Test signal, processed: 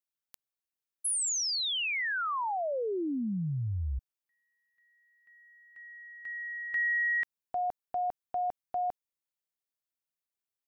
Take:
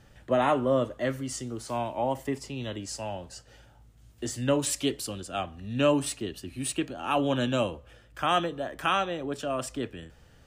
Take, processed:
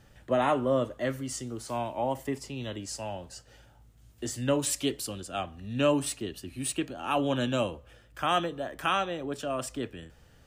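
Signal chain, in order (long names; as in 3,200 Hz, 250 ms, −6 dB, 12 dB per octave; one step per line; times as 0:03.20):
high-shelf EQ 12,000 Hz +5.5 dB
level −1.5 dB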